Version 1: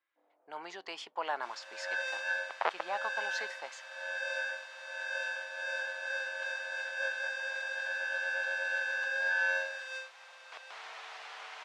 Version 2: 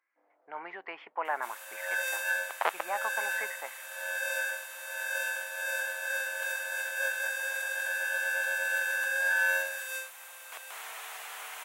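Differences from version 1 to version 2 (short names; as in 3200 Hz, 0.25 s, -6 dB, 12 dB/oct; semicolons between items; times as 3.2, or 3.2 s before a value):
speech: add Chebyshev low-pass 2200 Hz, order 4; second sound: add bell 4900 Hz -14.5 dB 1.1 oct; master: remove tape spacing loss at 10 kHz 31 dB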